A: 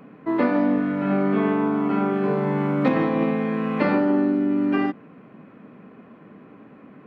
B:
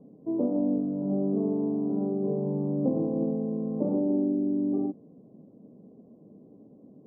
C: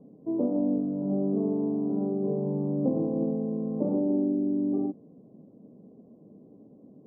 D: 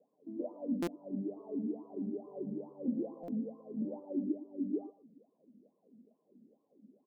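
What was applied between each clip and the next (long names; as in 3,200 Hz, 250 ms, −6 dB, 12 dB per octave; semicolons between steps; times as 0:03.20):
inverse Chebyshev low-pass filter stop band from 1,600 Hz, stop band 50 dB; level −5.5 dB
no processing that can be heard
LFO wah 2.3 Hz 210–1,100 Hz, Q 10; single-tap delay 115 ms −14.5 dB; buffer that repeats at 0:00.82/0:03.23, samples 256, times 8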